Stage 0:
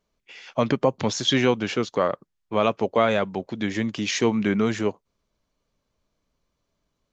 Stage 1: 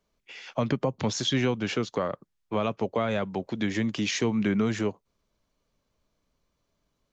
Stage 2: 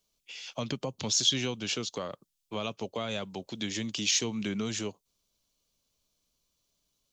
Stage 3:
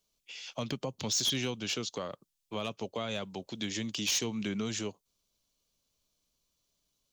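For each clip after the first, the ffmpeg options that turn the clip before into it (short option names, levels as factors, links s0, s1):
-filter_complex "[0:a]acrossover=split=200[s0][s1];[s1]acompressor=threshold=0.0447:ratio=3[s2];[s0][s2]amix=inputs=2:normalize=0"
-af "aexciter=amount=4.5:drive=5.4:freq=2700,volume=0.398"
-af "asoftclip=type=hard:threshold=0.0668,volume=0.841"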